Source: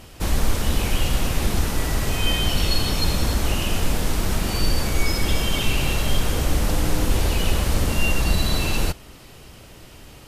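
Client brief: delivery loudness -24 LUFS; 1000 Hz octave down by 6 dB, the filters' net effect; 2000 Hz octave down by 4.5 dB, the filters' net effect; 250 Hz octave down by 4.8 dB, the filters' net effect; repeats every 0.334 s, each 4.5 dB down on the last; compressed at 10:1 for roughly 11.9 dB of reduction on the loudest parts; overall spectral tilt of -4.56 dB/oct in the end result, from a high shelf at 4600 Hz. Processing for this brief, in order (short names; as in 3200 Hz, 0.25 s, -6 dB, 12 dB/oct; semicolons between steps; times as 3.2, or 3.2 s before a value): bell 250 Hz -6.5 dB; bell 1000 Hz -6.5 dB; bell 2000 Hz -3 dB; high shelf 4600 Hz -6 dB; compressor 10:1, threshold -26 dBFS; feedback echo 0.334 s, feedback 60%, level -4.5 dB; gain +9.5 dB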